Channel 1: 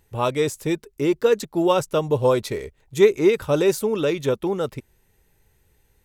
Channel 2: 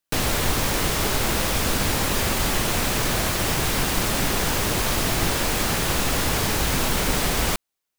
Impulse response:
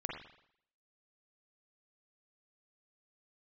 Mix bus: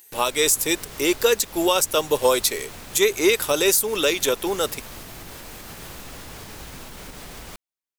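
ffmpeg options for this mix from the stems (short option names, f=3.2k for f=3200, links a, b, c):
-filter_complex "[0:a]highpass=300,crystalizer=i=8:c=0,volume=-0.5dB[a];[1:a]alimiter=limit=-16dB:level=0:latency=1:release=199,volume=-12.5dB[b];[a][b]amix=inputs=2:normalize=0,alimiter=limit=-7dB:level=0:latency=1:release=227"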